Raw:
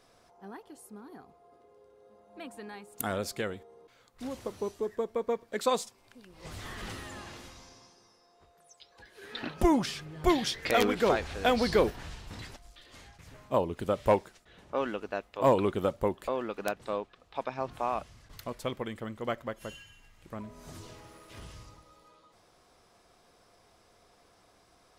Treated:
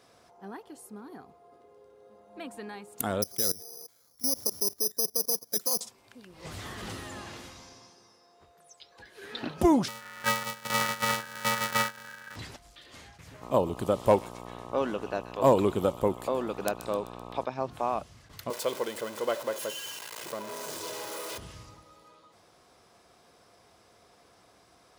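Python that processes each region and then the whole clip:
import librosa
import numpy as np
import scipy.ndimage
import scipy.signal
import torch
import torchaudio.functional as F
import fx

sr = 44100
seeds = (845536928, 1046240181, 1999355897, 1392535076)

y = fx.chain(x, sr, fx.high_shelf(hz=2800.0, db=-11.0),
    fx.level_steps(step_db=19),
    fx.resample_bad(factor=8, down='filtered', up='zero_stuff'), at=(3.22, 5.81))
y = fx.chain(y, sr, fx.sample_sort(block=128),
    fx.ring_mod(carrier_hz=1600.0), at=(9.88, 12.36))
y = fx.peak_eq(y, sr, hz=11000.0, db=4.5, octaves=2.0, at=(13.41, 17.44), fade=0.02)
y = fx.dmg_buzz(y, sr, base_hz=60.0, harmonics=21, level_db=-46.0, tilt_db=-1, odd_only=False, at=(13.41, 17.44), fade=0.02)
y = fx.echo_wet_highpass(y, sr, ms=128, feedback_pct=55, hz=2100.0, wet_db=-10.0, at=(13.41, 17.44), fade=0.02)
y = fx.chain(y, sr, fx.zero_step(step_db=-35.0),
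    fx.highpass(hz=360.0, slope=12),
    fx.comb(ms=2.0, depth=0.42), at=(18.5, 21.38))
y = scipy.signal.sosfilt(scipy.signal.butter(2, 70.0, 'highpass', fs=sr, output='sos'), y)
y = fx.dynamic_eq(y, sr, hz=2000.0, q=0.99, threshold_db=-47.0, ratio=4.0, max_db=-6)
y = y * 10.0 ** (3.0 / 20.0)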